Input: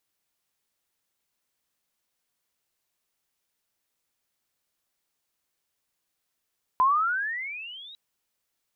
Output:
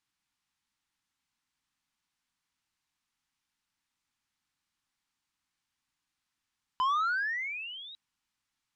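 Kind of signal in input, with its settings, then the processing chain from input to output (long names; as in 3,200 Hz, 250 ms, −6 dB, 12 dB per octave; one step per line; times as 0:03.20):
pitch glide with a swell sine, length 1.15 s, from 1,000 Hz, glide +23.5 semitones, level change −26 dB, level −16.5 dB
flat-topped bell 500 Hz −13 dB 1.1 octaves
soft clipping −25.5 dBFS
high-frequency loss of the air 58 metres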